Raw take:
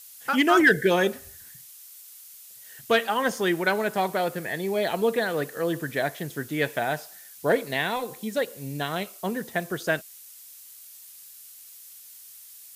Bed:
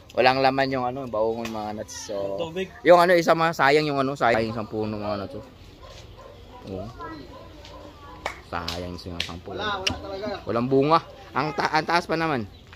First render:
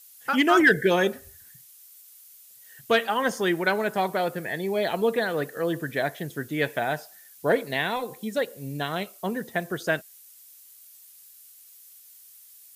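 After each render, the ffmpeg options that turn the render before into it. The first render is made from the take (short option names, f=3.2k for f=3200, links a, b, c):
-af "afftdn=nr=6:nf=-47"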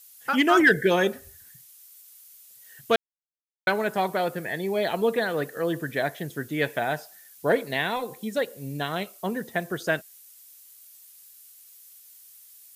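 -filter_complex "[0:a]asplit=3[a][b][c];[a]atrim=end=2.96,asetpts=PTS-STARTPTS,afade=t=out:st=2.956:d=0.004:c=hsin[d];[b]atrim=start=2.96:end=3.67,asetpts=PTS-STARTPTS,volume=0[e];[c]atrim=start=3.67,asetpts=PTS-STARTPTS,afade=t=in:d=0.004:c=hsin[f];[d][e][f]concat=n=3:v=0:a=1"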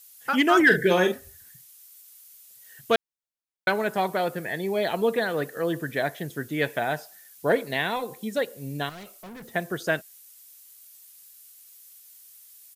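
-filter_complex "[0:a]asplit=3[a][b][c];[a]afade=t=out:st=0.69:d=0.02[d];[b]asplit=2[e][f];[f]adelay=44,volume=-7dB[g];[e][g]amix=inputs=2:normalize=0,afade=t=in:st=0.69:d=0.02,afade=t=out:st=1.14:d=0.02[h];[c]afade=t=in:st=1.14:d=0.02[i];[d][h][i]amix=inputs=3:normalize=0,asettb=1/sr,asplit=3[j][k][l];[j]atrim=end=8.894[m];[k]atrim=start=8.89:end=9.54,asetpts=PTS-STARTPTS,afade=t=in:d=0.004:c=qsin,afade=t=out:st=0.646:d=0.004:c=qsin,aeval=exprs='(tanh(100*val(0)+0.1)-tanh(0.1))/100':c=same[n];[l]atrim=start=9.536[o];[m][n]acrossfade=d=0.004:c1=hsin:c2=qsin[p];[p][o]acrossfade=d=0.004:c1=qsin:c2=hsin"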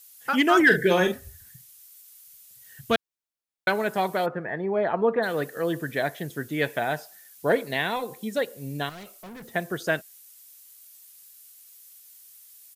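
-filter_complex "[0:a]asplit=3[a][b][c];[a]afade=t=out:st=1:d=0.02[d];[b]asubboost=boost=6:cutoff=180,afade=t=in:st=1:d=0.02,afade=t=out:st=2.95:d=0.02[e];[c]afade=t=in:st=2.95:d=0.02[f];[d][e][f]amix=inputs=3:normalize=0,asplit=3[g][h][i];[g]afade=t=out:st=4.25:d=0.02[j];[h]lowpass=f=1.3k:t=q:w=1.7,afade=t=in:st=4.25:d=0.02,afade=t=out:st=5.22:d=0.02[k];[i]afade=t=in:st=5.22:d=0.02[l];[j][k][l]amix=inputs=3:normalize=0"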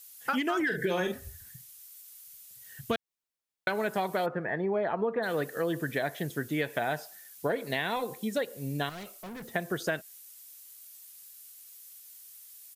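-af "alimiter=limit=-14dB:level=0:latency=1:release=148,acompressor=threshold=-26dB:ratio=6"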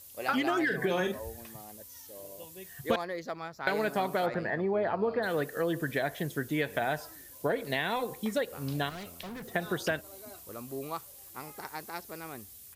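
-filter_complex "[1:a]volume=-19dB[a];[0:a][a]amix=inputs=2:normalize=0"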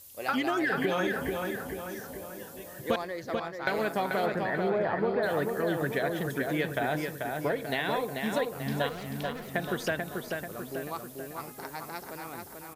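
-filter_complex "[0:a]asplit=2[a][b];[b]adelay=438,lowpass=f=3.7k:p=1,volume=-4dB,asplit=2[c][d];[d]adelay=438,lowpass=f=3.7k:p=1,volume=0.54,asplit=2[e][f];[f]adelay=438,lowpass=f=3.7k:p=1,volume=0.54,asplit=2[g][h];[h]adelay=438,lowpass=f=3.7k:p=1,volume=0.54,asplit=2[i][j];[j]adelay=438,lowpass=f=3.7k:p=1,volume=0.54,asplit=2[k][l];[l]adelay=438,lowpass=f=3.7k:p=1,volume=0.54,asplit=2[m][n];[n]adelay=438,lowpass=f=3.7k:p=1,volume=0.54[o];[a][c][e][g][i][k][m][o]amix=inputs=8:normalize=0"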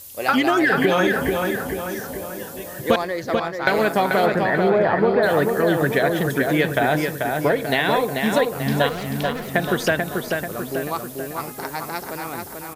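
-af "volume=10.5dB"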